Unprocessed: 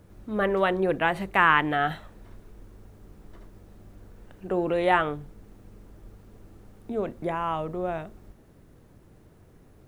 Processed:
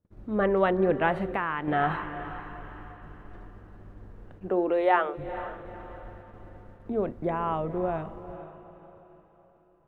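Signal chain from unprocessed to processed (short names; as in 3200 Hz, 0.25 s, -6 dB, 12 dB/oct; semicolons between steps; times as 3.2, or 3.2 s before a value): LPF 1200 Hz 6 dB/oct; gate -49 dBFS, range -28 dB; 4.48–5.17 HPF 200 Hz -> 530 Hz 24 dB/oct; diffused feedback echo 0.464 s, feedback 42%, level -13 dB; 1.26–1.68 compressor 4:1, threshold -29 dBFS, peak gain reduction 10.5 dB; gain +1.5 dB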